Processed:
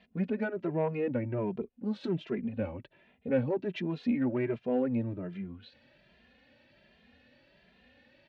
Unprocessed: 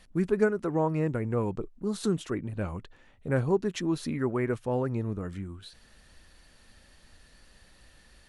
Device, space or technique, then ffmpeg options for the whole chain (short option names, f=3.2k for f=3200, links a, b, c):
barber-pole flanger into a guitar amplifier: -filter_complex "[0:a]asplit=2[a][b];[b]adelay=2.5,afreqshift=1.3[c];[a][c]amix=inputs=2:normalize=1,asoftclip=type=tanh:threshold=-23dB,highpass=110,equalizer=f=240:t=q:w=4:g=8,equalizer=f=570:t=q:w=4:g=7,equalizer=f=1.2k:t=q:w=4:g=-9,equalizer=f=2.5k:t=q:w=4:g=5,lowpass=f=3.6k:w=0.5412,lowpass=f=3.6k:w=1.3066"